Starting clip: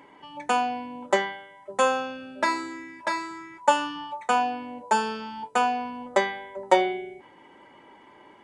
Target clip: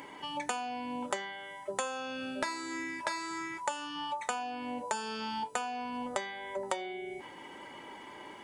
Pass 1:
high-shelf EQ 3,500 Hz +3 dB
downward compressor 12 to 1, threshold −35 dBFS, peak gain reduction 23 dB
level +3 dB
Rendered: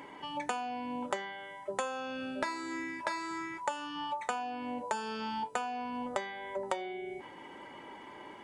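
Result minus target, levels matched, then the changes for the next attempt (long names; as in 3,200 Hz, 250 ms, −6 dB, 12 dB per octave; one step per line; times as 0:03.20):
8,000 Hz band −6.0 dB
change: high-shelf EQ 3,500 Hz +11.5 dB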